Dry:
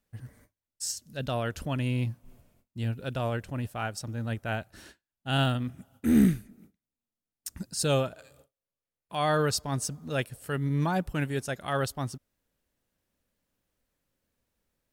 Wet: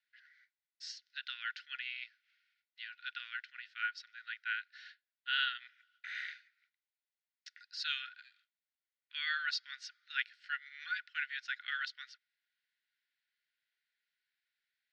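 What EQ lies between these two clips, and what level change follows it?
rippled Chebyshev high-pass 1.4 kHz, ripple 6 dB; resonant low-pass 4 kHz, resonance Q 1.7; distance through air 250 m; +5.0 dB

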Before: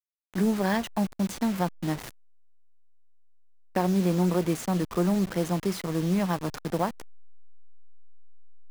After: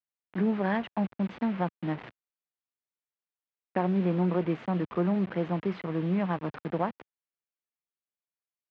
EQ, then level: high-pass 110 Hz 12 dB/octave; low-pass 2.9 kHz 24 dB/octave; -2.0 dB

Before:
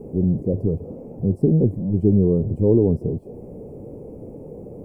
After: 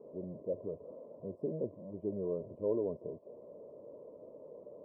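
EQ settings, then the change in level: two resonant band-passes 790 Hz, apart 0.71 oct; -2.0 dB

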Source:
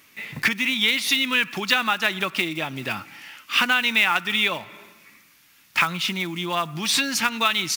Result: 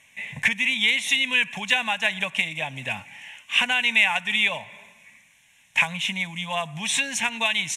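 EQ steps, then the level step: low-pass 8.1 kHz 24 dB/octave; treble shelf 5.4 kHz +11 dB; static phaser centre 1.3 kHz, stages 6; 0.0 dB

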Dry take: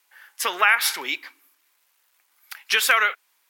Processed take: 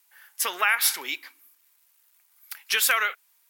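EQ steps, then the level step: treble shelf 6.6 kHz +11.5 dB; -5.5 dB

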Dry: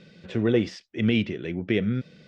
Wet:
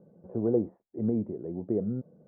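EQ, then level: steep low-pass 870 Hz 36 dB/octave; tilt EQ +2.5 dB/octave; 0.0 dB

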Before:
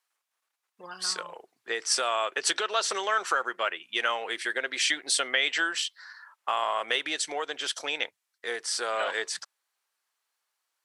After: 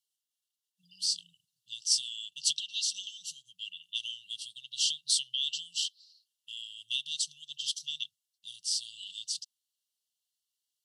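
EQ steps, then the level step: dynamic bell 4.9 kHz, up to +5 dB, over -41 dBFS, Q 1.2; brick-wall FIR band-stop 180–2700 Hz; -4.0 dB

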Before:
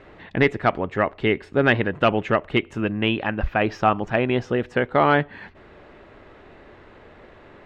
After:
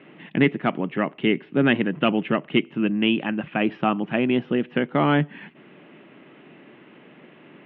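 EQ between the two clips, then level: high-order bell 850 Hz -9 dB 2.5 oct; dynamic bell 2.5 kHz, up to -4 dB, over -40 dBFS, Q 1.5; Chebyshev band-pass 150–3100 Hz, order 4; +5.0 dB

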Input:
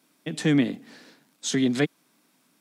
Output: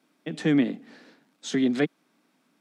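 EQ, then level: high-pass 160 Hz 24 dB/octave; low-pass 2.5 kHz 6 dB/octave; band-stop 1 kHz, Q 20; 0.0 dB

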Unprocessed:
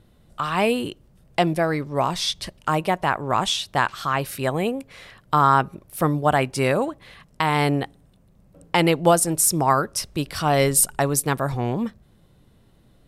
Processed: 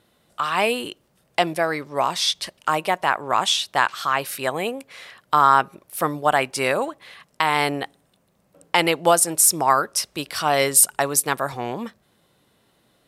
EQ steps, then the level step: high-pass 700 Hz 6 dB/octave; +3.5 dB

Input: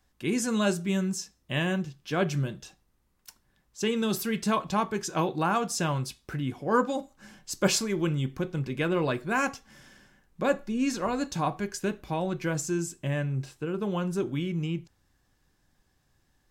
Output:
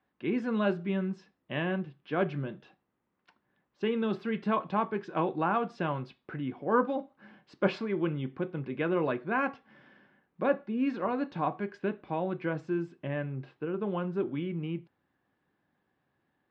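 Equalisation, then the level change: band-pass 200–4500 Hz; distance through air 410 m; 0.0 dB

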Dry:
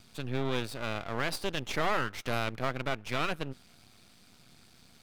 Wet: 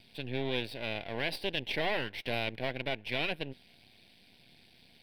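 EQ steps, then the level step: bass shelf 390 Hz -11 dB; treble shelf 6.6 kHz -11.5 dB; static phaser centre 3 kHz, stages 4; +5.5 dB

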